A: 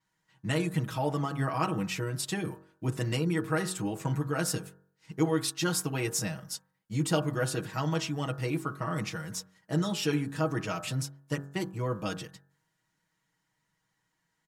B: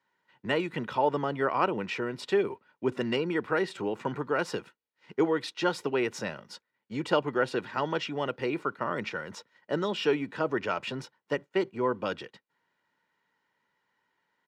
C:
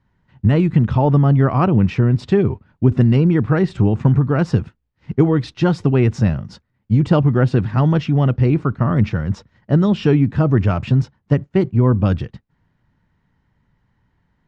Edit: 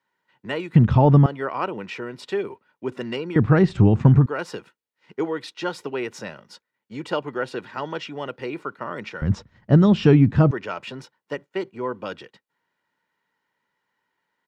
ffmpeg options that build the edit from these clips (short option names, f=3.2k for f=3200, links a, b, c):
-filter_complex "[2:a]asplit=3[a][b][c];[1:a]asplit=4[d][e][f][g];[d]atrim=end=0.752[h];[a]atrim=start=0.748:end=1.262[i];[e]atrim=start=1.258:end=3.362[j];[b]atrim=start=3.358:end=4.262[k];[f]atrim=start=4.258:end=9.222[l];[c]atrim=start=9.218:end=10.512[m];[g]atrim=start=10.508[n];[h][i]acrossfade=d=0.004:c1=hsin:c2=hsin[o];[o][j]acrossfade=d=0.004:c1=hsin:c2=hsin[p];[p][k]acrossfade=d=0.004:c1=hsin:c2=hsin[q];[q][l]acrossfade=d=0.004:c1=hsin:c2=hsin[r];[r][m]acrossfade=d=0.004:c1=hsin:c2=hsin[s];[s][n]acrossfade=d=0.004:c1=hsin:c2=hsin"